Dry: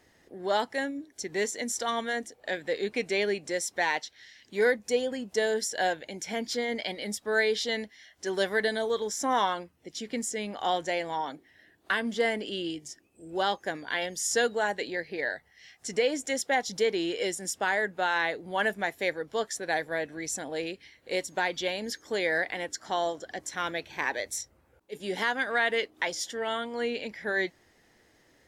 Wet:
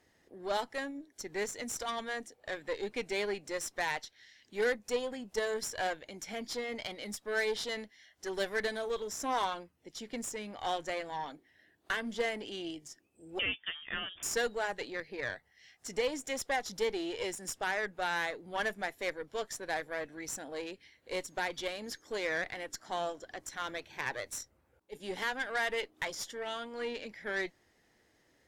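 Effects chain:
harmonic generator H 6 −20 dB, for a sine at −14.5 dBFS
0:13.39–0:14.23: voice inversion scrambler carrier 3,500 Hz
level −6.5 dB

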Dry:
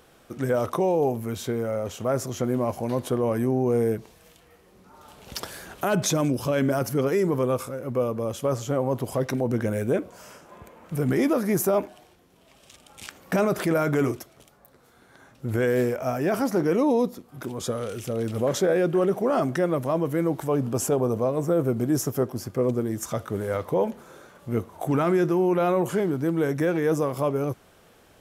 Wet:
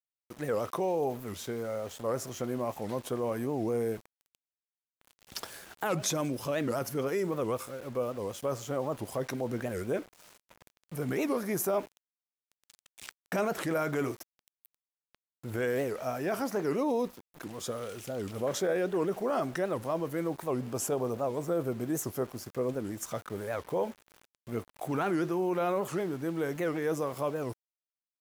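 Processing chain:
low-shelf EQ 360 Hz −6.5 dB
centre clipping without the shift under −41.5 dBFS
wow of a warped record 78 rpm, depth 250 cents
level −5 dB

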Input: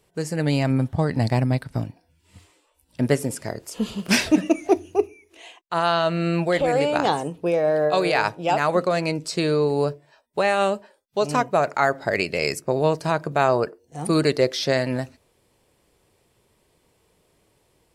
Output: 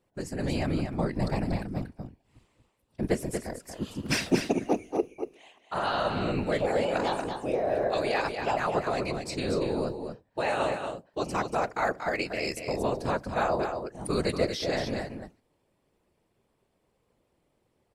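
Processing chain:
random phases in short frames
single-tap delay 235 ms −6.5 dB
one half of a high-frequency compander decoder only
level −8 dB

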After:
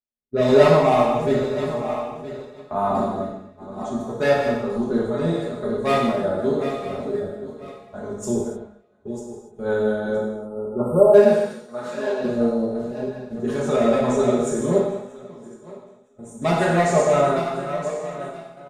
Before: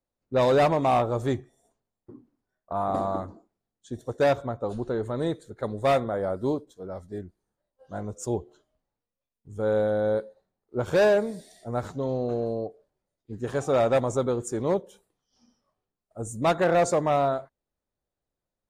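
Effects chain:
feedback delay that plays each chunk backwards 484 ms, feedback 55%, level −8.5 dB
0:10.17–0:11.14: time-frequency box erased 1,400–7,900 Hz
0:11.34–0:12.24: meter weighting curve A
noise gate −38 dBFS, range −18 dB
comb filter 4.8 ms, depth 71%
0:14.78–0:16.42: downward compressor 6 to 1, threshold −41 dBFS, peak gain reduction 15.5 dB
rotating-speaker cabinet horn 1 Hz, later 5.5 Hz, at 0:03.20
far-end echo of a speakerphone 280 ms, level −26 dB
reverb whose tail is shaped and stops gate 330 ms falling, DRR −4.5 dB

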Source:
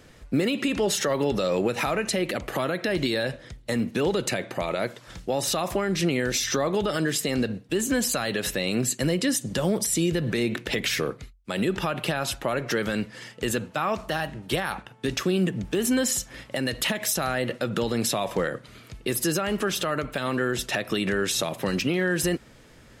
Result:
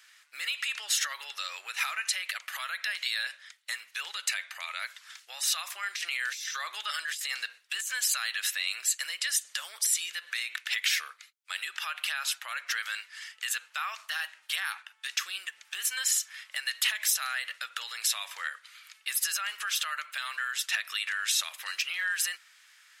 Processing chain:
high-pass filter 1,400 Hz 24 dB per octave
0:05.83–0:07.92: compressor whose output falls as the input rises −34 dBFS, ratio −1

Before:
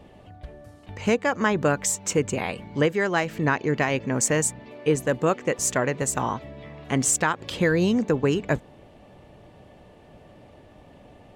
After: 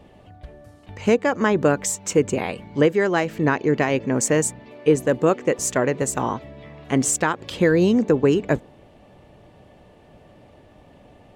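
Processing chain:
dynamic equaliser 360 Hz, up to +6 dB, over −33 dBFS, Q 0.79

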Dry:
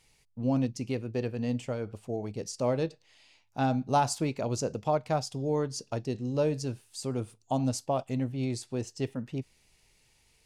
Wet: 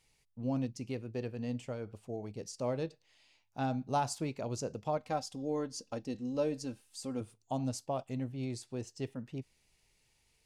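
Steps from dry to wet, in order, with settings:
0:04.97–0:07.21: comb filter 3.8 ms, depth 58%
level −6.5 dB

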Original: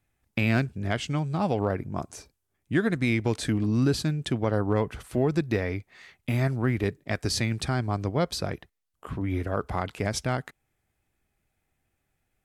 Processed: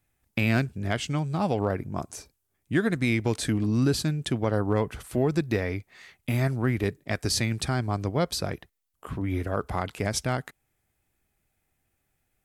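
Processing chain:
high-shelf EQ 8,100 Hz +7.5 dB

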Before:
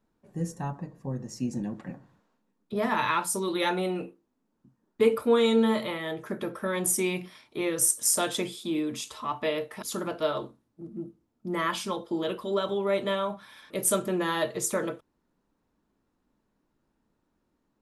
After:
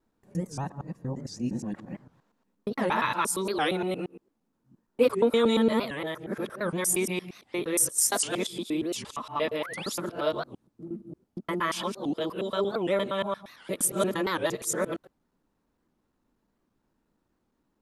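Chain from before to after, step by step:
reversed piece by piece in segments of 116 ms
sound drawn into the spectrogram rise, 0:09.60–0:09.92, 760–6,100 Hz −40 dBFS
wow of a warped record 78 rpm, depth 250 cents

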